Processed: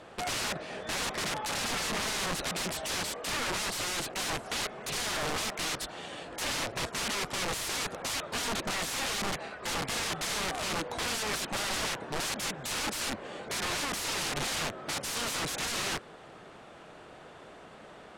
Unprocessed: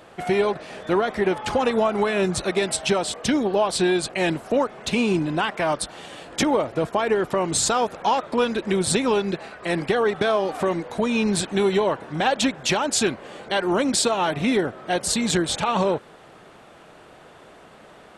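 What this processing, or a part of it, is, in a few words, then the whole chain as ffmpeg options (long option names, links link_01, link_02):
overflowing digital effects unit: -af "aeval=exprs='(mod(16.8*val(0)+1,2)-1)/16.8':channel_layout=same,lowpass=9600,volume=-2.5dB"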